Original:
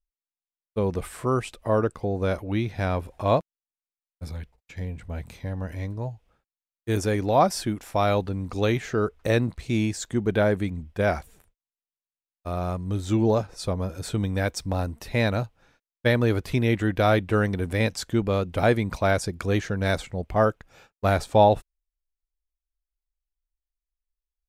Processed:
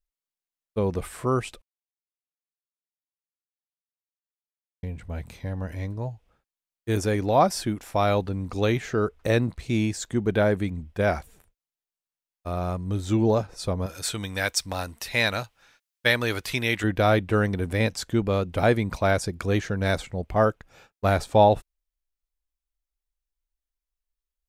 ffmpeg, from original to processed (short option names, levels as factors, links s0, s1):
-filter_complex "[0:a]asettb=1/sr,asplit=3[s0][s1][s2];[s0]atrim=end=13.864[s3];[s1]atrim=start=13.86:end=16.84,asetpts=PTS-STARTPTS,afade=t=in:d=0.004:c=qsin,afade=t=out:st=2.976:d=0.004:c=qsin,tiltshelf=f=850:g=-8.5[s4];[s2]atrim=start=16.836[s5];[s3][s4]acrossfade=d=0.004:c1=hsin:c2=qsin[s6];[s6][s5]acrossfade=d=0.004:c1=qsin:c2=hsin,asplit=3[s7][s8][s9];[s7]atrim=end=1.62,asetpts=PTS-STARTPTS,afade=t=out:st=1.616:d=0.004:c=hsin[s10];[s8]atrim=start=1.62:end=4.83,asetpts=PTS-STARTPTS,volume=0[s11];[s9]atrim=start=4.83,asetpts=PTS-STARTPTS,afade=t=in:d=0.004:c=hsin[s12];[s10][s11][s12]concat=n=3:v=0:a=1"